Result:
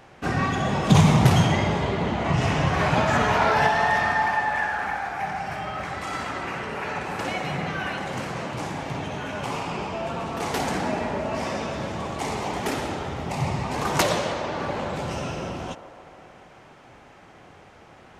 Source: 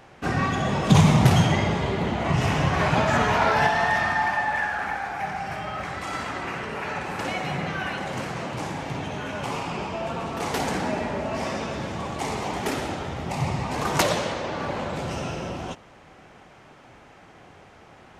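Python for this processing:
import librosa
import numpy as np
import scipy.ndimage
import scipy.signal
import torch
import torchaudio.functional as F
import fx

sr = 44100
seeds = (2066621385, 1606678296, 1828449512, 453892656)

y = fx.lowpass(x, sr, hz=9300.0, slope=12, at=(1.85, 2.67))
y = fx.echo_wet_bandpass(y, sr, ms=148, feedback_pct=72, hz=670.0, wet_db=-11.5)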